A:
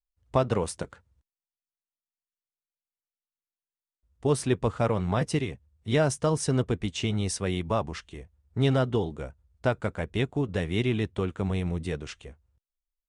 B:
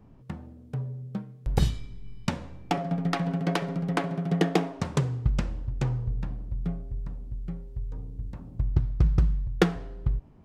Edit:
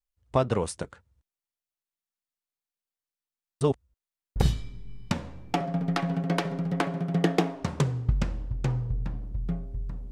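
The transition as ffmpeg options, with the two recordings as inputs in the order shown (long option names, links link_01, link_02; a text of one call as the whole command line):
ffmpeg -i cue0.wav -i cue1.wav -filter_complex "[0:a]apad=whole_dur=10.11,atrim=end=10.11,asplit=2[link_01][link_02];[link_01]atrim=end=3.612[link_03];[link_02]atrim=start=3.608:end=4.362,asetpts=PTS-STARTPTS,areverse[link_04];[1:a]atrim=start=1.528:end=7.28[link_05];[link_03][link_04]acrossfade=duration=0.004:curve1=hsin:curve2=hsin[link_06];[link_06][link_05]acrossfade=duration=0.004:curve1=hsin:curve2=hsin" out.wav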